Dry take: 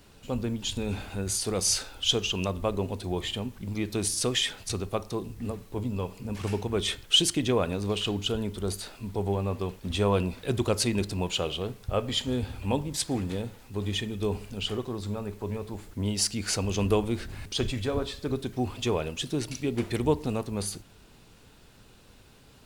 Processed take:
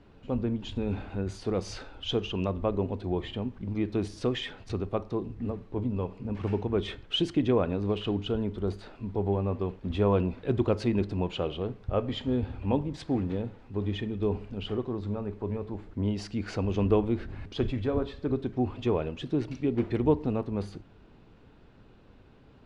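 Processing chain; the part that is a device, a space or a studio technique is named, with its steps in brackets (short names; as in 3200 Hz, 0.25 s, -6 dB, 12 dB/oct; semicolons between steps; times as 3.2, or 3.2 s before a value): phone in a pocket (LPF 3700 Hz 12 dB/oct; bell 300 Hz +3 dB 0.77 oct; high shelf 2300 Hz -11.5 dB)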